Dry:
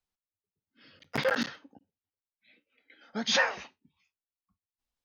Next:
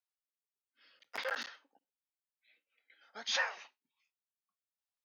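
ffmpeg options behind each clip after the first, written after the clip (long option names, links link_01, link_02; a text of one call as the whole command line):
ffmpeg -i in.wav -af "highpass=690,volume=-7dB" out.wav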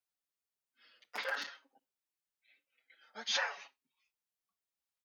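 ffmpeg -i in.wav -filter_complex "[0:a]asplit=2[link_01][link_02];[link_02]adelay=6.3,afreqshift=-0.93[link_03];[link_01][link_03]amix=inputs=2:normalize=1,volume=3.5dB" out.wav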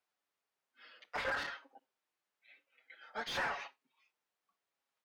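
ffmpeg -i in.wav -filter_complex "[0:a]asplit=2[link_01][link_02];[link_02]highpass=frequency=720:poles=1,volume=25dB,asoftclip=type=tanh:threshold=-19.5dB[link_03];[link_01][link_03]amix=inputs=2:normalize=0,lowpass=frequency=1000:poles=1,volume=-6dB,volume=-4dB" out.wav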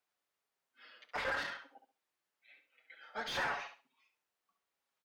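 ffmpeg -i in.wav -af "aecho=1:1:68|136|204:0.355|0.0781|0.0172" out.wav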